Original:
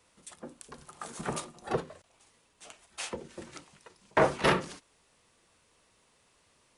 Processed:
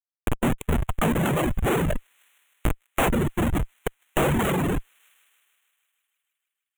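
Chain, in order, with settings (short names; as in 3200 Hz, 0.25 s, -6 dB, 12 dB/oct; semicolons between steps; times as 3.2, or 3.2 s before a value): half-waves squared off; tilt shelf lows +8 dB, about 650 Hz; sample leveller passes 3; Schmitt trigger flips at -32.5 dBFS; Butterworth band-stop 4900 Hz, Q 1.2; thin delay 0.155 s, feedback 71%, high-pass 2300 Hz, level -22 dB; reverb removal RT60 1.7 s; mismatched tape noise reduction encoder only; gain +2.5 dB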